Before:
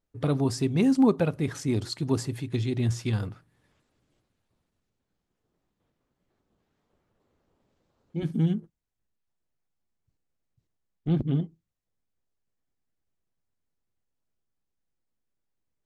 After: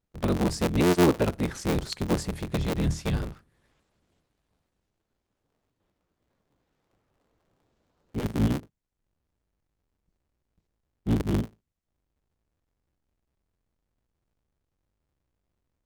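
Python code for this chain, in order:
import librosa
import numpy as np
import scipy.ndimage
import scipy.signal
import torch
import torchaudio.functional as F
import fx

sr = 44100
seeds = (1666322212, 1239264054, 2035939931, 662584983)

y = fx.cycle_switch(x, sr, every=3, mode='inverted')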